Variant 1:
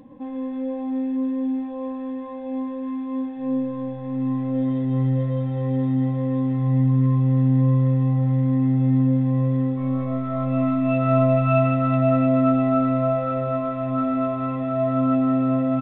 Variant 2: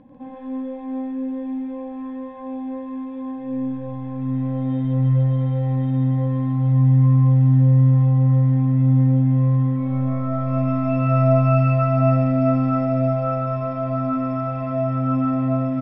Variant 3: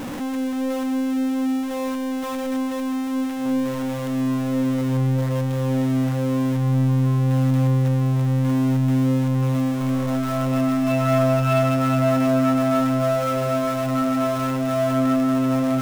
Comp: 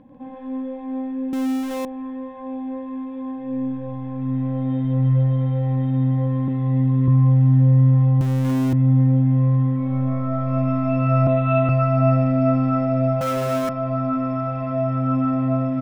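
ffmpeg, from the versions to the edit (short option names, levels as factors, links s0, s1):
-filter_complex "[2:a]asplit=3[s0][s1][s2];[0:a]asplit=2[s3][s4];[1:a]asplit=6[s5][s6][s7][s8][s9][s10];[s5]atrim=end=1.332[s11];[s0]atrim=start=1.328:end=1.852[s12];[s6]atrim=start=1.848:end=6.482[s13];[s3]atrim=start=6.478:end=7.082[s14];[s7]atrim=start=7.078:end=8.212[s15];[s1]atrim=start=8.208:end=8.732[s16];[s8]atrim=start=8.728:end=11.272[s17];[s4]atrim=start=11.268:end=11.692[s18];[s9]atrim=start=11.688:end=13.212[s19];[s2]atrim=start=13.208:end=13.692[s20];[s10]atrim=start=13.688[s21];[s11][s12]acrossfade=d=0.004:c1=hsin:c2=hsin[s22];[s22][s13]acrossfade=d=0.004:c1=hsin:c2=hsin[s23];[s23][s14]acrossfade=d=0.004:c1=hsin:c2=hsin[s24];[s24][s15]acrossfade=d=0.004:c1=hsin:c2=hsin[s25];[s25][s16]acrossfade=d=0.004:c1=hsin:c2=hsin[s26];[s26][s17]acrossfade=d=0.004:c1=hsin:c2=hsin[s27];[s27][s18]acrossfade=d=0.004:c1=hsin:c2=hsin[s28];[s28][s19]acrossfade=d=0.004:c1=hsin:c2=hsin[s29];[s29][s20]acrossfade=d=0.004:c1=hsin:c2=hsin[s30];[s30][s21]acrossfade=d=0.004:c1=hsin:c2=hsin"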